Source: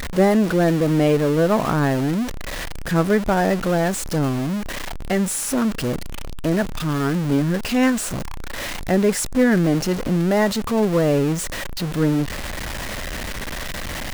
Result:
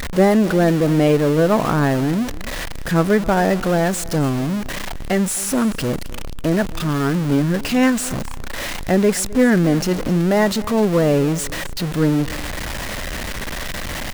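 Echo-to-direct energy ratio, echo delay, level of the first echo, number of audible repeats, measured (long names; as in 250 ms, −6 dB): −19.5 dB, 262 ms, −19.5 dB, 2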